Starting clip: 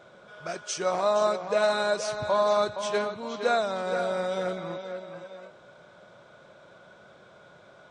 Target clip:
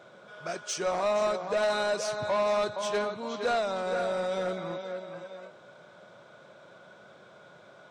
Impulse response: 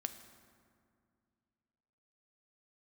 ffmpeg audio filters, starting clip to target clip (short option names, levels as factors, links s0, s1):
-af "highpass=110,asoftclip=type=tanh:threshold=0.0841"